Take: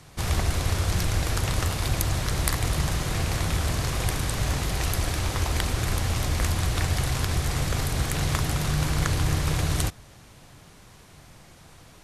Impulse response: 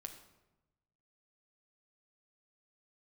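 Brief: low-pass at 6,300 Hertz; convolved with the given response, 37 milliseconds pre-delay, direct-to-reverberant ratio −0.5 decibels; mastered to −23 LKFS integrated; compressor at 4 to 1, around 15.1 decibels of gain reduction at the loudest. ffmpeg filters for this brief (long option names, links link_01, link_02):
-filter_complex "[0:a]lowpass=6300,acompressor=threshold=-39dB:ratio=4,asplit=2[link_01][link_02];[1:a]atrim=start_sample=2205,adelay=37[link_03];[link_02][link_03]afir=irnorm=-1:irlink=0,volume=5dB[link_04];[link_01][link_04]amix=inputs=2:normalize=0,volume=14.5dB"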